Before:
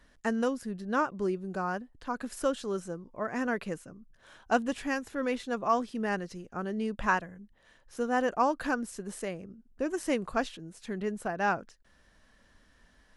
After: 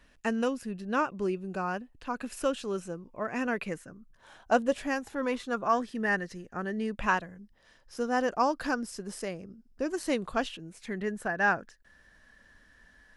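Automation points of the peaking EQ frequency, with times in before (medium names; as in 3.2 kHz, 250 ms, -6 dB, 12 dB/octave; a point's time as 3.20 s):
peaking EQ +10.5 dB 0.25 oct
3.59 s 2.6 kHz
4.63 s 500 Hz
5.83 s 1.8 kHz
6.90 s 1.8 kHz
7.32 s 5.1 kHz
9.84 s 5.1 kHz
11.11 s 1.7 kHz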